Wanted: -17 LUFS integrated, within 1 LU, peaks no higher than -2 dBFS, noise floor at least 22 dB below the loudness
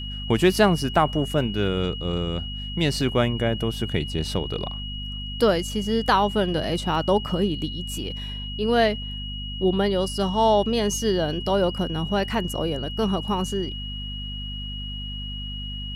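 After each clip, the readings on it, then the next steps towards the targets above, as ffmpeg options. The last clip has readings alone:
hum 50 Hz; highest harmonic 250 Hz; hum level -31 dBFS; steady tone 2.9 kHz; tone level -34 dBFS; loudness -24.5 LUFS; peak level -4.0 dBFS; loudness target -17.0 LUFS
-> -af "bandreject=f=50:t=h:w=6,bandreject=f=100:t=h:w=6,bandreject=f=150:t=h:w=6,bandreject=f=200:t=h:w=6,bandreject=f=250:t=h:w=6"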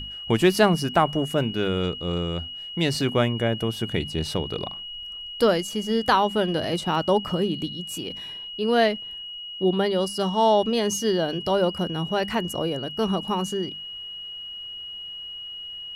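hum not found; steady tone 2.9 kHz; tone level -34 dBFS
-> -af "bandreject=f=2900:w=30"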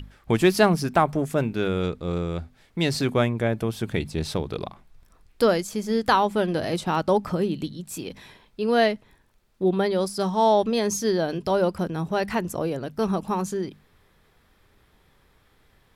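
steady tone not found; loudness -24.5 LUFS; peak level -4.5 dBFS; loudness target -17.0 LUFS
-> -af "volume=2.37,alimiter=limit=0.794:level=0:latency=1"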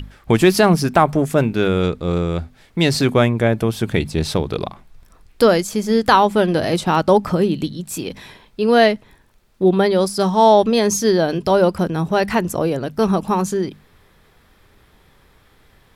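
loudness -17.5 LUFS; peak level -2.0 dBFS; noise floor -54 dBFS

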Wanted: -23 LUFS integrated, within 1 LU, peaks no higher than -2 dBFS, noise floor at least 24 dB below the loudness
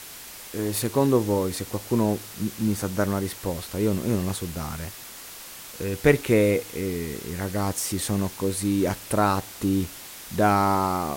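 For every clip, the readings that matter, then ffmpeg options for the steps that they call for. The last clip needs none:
noise floor -41 dBFS; noise floor target -50 dBFS; loudness -25.5 LUFS; peak level -5.0 dBFS; loudness target -23.0 LUFS
-> -af "afftdn=nr=9:nf=-41"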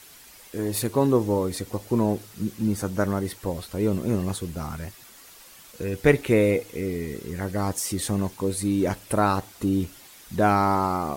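noise floor -49 dBFS; noise floor target -50 dBFS
-> -af "afftdn=nr=6:nf=-49"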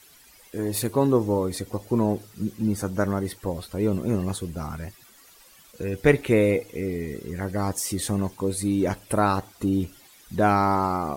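noise floor -53 dBFS; loudness -25.5 LUFS; peak level -5.0 dBFS; loudness target -23.0 LUFS
-> -af "volume=1.33"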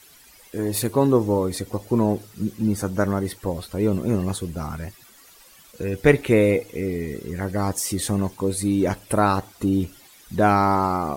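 loudness -23.0 LUFS; peak level -2.5 dBFS; noise floor -51 dBFS

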